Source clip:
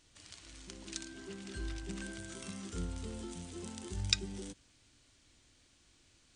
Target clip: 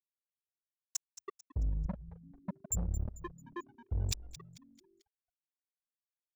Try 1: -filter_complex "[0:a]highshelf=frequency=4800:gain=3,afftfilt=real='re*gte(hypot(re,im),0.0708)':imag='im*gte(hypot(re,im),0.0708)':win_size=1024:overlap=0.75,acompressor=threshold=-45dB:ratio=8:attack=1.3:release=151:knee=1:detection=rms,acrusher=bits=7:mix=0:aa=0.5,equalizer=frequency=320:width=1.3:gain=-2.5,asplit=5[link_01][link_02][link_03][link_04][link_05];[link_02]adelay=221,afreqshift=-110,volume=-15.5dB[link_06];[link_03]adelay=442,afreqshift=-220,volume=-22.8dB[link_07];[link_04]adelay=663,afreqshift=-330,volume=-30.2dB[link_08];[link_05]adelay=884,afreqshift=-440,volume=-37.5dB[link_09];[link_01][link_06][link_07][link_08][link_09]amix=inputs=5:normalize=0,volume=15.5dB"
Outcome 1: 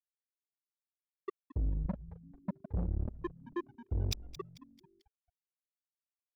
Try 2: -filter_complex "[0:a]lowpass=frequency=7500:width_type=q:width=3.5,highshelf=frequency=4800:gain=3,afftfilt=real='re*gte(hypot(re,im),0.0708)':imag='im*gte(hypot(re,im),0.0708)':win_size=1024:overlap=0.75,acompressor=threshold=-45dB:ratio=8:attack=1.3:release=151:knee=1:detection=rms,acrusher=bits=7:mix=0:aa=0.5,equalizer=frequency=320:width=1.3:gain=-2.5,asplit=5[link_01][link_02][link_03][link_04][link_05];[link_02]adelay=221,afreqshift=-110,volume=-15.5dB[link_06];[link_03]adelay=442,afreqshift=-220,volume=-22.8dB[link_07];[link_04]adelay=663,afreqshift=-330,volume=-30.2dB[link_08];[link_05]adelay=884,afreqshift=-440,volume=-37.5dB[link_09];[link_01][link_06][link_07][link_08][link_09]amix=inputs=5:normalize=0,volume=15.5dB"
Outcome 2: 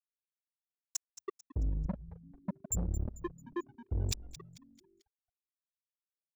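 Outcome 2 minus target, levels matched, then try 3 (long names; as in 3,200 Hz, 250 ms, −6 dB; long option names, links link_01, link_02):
250 Hz band +3.0 dB
-filter_complex "[0:a]lowpass=frequency=7500:width_type=q:width=3.5,highshelf=frequency=4800:gain=3,afftfilt=real='re*gte(hypot(re,im),0.0708)':imag='im*gte(hypot(re,im),0.0708)':win_size=1024:overlap=0.75,acompressor=threshold=-45dB:ratio=8:attack=1.3:release=151:knee=1:detection=rms,acrusher=bits=7:mix=0:aa=0.5,equalizer=frequency=320:width=1.3:gain=-10,asplit=5[link_01][link_02][link_03][link_04][link_05];[link_02]adelay=221,afreqshift=-110,volume=-15.5dB[link_06];[link_03]adelay=442,afreqshift=-220,volume=-22.8dB[link_07];[link_04]adelay=663,afreqshift=-330,volume=-30.2dB[link_08];[link_05]adelay=884,afreqshift=-440,volume=-37.5dB[link_09];[link_01][link_06][link_07][link_08][link_09]amix=inputs=5:normalize=0,volume=15.5dB"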